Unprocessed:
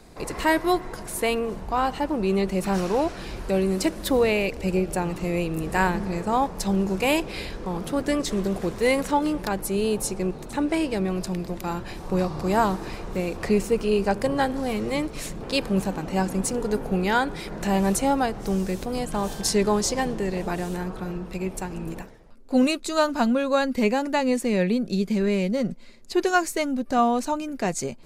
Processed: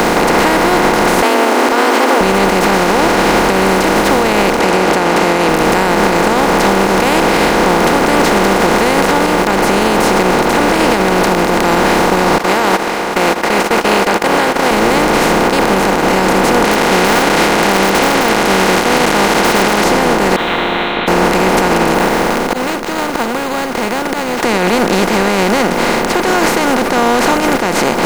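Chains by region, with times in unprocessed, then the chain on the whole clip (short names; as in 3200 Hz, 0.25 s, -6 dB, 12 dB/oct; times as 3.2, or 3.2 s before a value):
1.22–2.21 frequency shift +220 Hz + mismatched tape noise reduction encoder only
4.59–5.49 HPF 350 Hz + air absorption 73 m
12.38–14.71 Chebyshev high-pass 560 Hz + gate -34 dBFS, range -39 dB + bell 2400 Hz +8.5 dB 1.9 oct
16.64–19.84 delta modulation 64 kbps, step -26.5 dBFS + weighting filter D + wrapped overs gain 13.5 dB
20.36–21.08 inverted band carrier 3800 Hz + resonator 350 Hz, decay 0.74 s, mix 90%
21.94–24.43 careless resampling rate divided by 4×, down none, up hold + flipped gate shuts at -22 dBFS, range -38 dB
whole clip: per-bin compression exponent 0.2; high shelf 5700 Hz -9 dB; limiter -6 dBFS; gain +4.5 dB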